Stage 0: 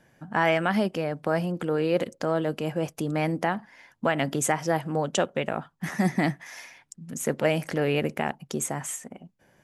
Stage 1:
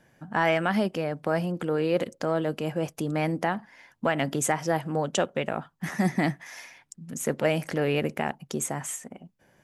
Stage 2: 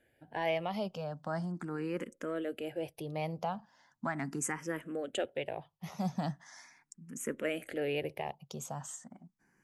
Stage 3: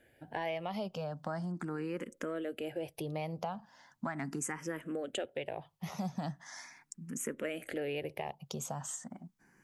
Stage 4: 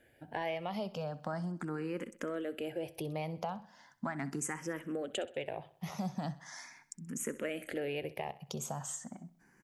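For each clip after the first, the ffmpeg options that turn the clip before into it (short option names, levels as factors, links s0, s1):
-af "acontrast=25,volume=0.531"
-filter_complex "[0:a]asplit=2[s0][s1];[s1]afreqshift=0.39[s2];[s0][s2]amix=inputs=2:normalize=1,volume=0.447"
-af "acompressor=threshold=0.00794:ratio=3,volume=1.88"
-af "aecho=1:1:64|128|192|256:0.133|0.064|0.0307|0.0147"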